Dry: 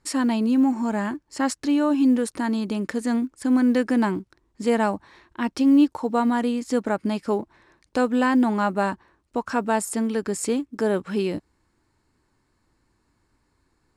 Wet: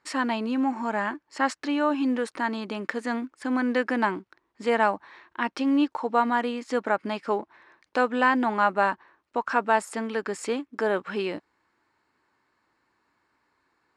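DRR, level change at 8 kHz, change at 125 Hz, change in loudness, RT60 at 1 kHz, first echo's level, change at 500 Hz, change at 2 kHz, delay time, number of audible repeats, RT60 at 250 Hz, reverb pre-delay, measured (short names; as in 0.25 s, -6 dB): none, -9.5 dB, n/a, -3.5 dB, none, none, -2.0 dB, +3.5 dB, none, none, none, none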